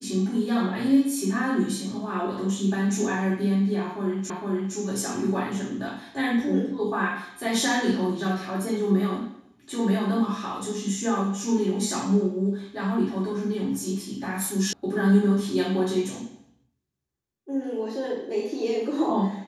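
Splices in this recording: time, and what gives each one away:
4.3 repeat of the last 0.46 s
14.73 sound cut off

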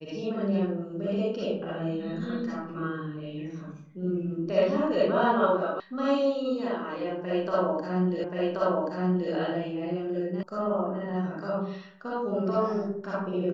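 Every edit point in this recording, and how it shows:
5.8 sound cut off
8.24 repeat of the last 1.08 s
10.43 sound cut off

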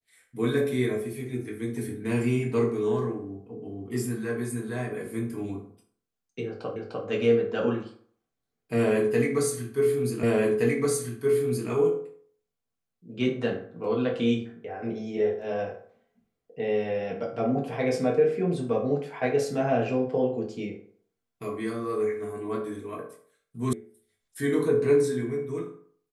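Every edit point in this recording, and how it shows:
6.76 repeat of the last 0.3 s
10.23 repeat of the last 1.47 s
23.73 sound cut off

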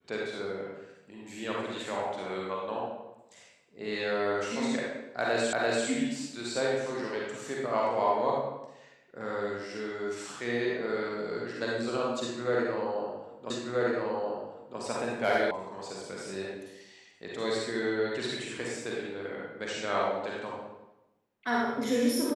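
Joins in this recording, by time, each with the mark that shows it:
5.53 repeat of the last 0.34 s
13.5 repeat of the last 1.28 s
15.51 sound cut off

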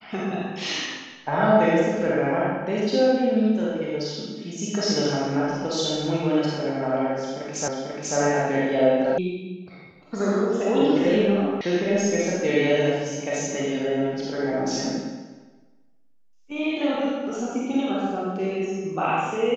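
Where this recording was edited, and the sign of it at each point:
7.68 repeat of the last 0.49 s
9.18 sound cut off
11.61 sound cut off

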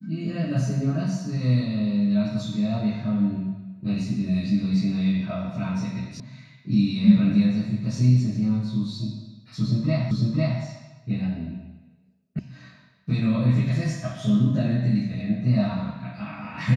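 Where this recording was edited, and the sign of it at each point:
6.2 sound cut off
10.11 repeat of the last 0.5 s
12.39 sound cut off

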